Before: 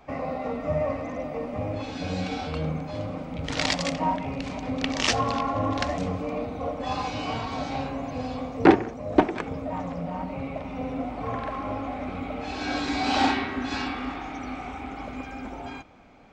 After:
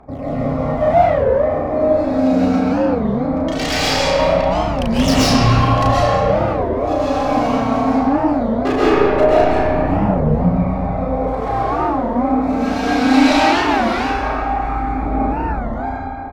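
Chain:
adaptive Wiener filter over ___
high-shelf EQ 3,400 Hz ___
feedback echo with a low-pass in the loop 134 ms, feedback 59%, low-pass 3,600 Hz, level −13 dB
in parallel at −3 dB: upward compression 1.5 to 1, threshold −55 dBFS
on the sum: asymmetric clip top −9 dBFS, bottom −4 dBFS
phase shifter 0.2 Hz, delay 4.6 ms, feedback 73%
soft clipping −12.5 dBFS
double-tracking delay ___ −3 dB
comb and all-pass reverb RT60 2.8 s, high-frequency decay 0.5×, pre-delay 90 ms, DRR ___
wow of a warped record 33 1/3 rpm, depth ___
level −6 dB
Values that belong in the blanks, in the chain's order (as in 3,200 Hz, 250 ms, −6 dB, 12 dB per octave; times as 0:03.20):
15 samples, +3 dB, 34 ms, −10 dB, 250 cents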